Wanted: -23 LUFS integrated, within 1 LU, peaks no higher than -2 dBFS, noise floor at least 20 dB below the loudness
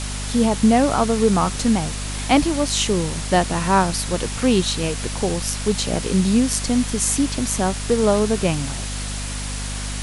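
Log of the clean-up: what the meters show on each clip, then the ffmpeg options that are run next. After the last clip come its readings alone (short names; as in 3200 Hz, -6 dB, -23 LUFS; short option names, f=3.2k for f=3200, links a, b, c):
hum 50 Hz; harmonics up to 250 Hz; hum level -26 dBFS; noise floor -28 dBFS; noise floor target -40 dBFS; loudness -20.0 LUFS; peak -2.0 dBFS; loudness target -23.0 LUFS
-> -af "bandreject=f=50:t=h:w=4,bandreject=f=100:t=h:w=4,bandreject=f=150:t=h:w=4,bandreject=f=200:t=h:w=4,bandreject=f=250:t=h:w=4"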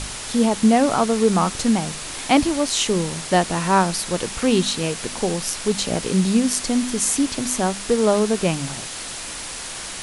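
hum none; noise floor -32 dBFS; noise floor target -41 dBFS
-> -af "afftdn=nr=9:nf=-32"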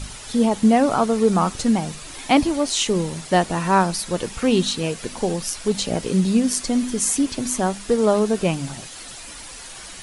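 noise floor -38 dBFS; noise floor target -41 dBFS
-> -af "afftdn=nr=6:nf=-38"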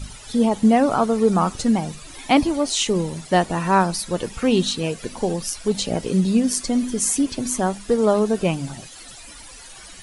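noise floor -42 dBFS; loudness -20.5 LUFS; peak -3.0 dBFS; loudness target -23.0 LUFS
-> -af "volume=-2.5dB"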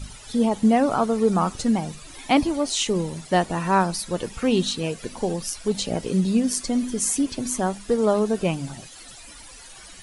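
loudness -23.0 LUFS; peak -5.5 dBFS; noise floor -44 dBFS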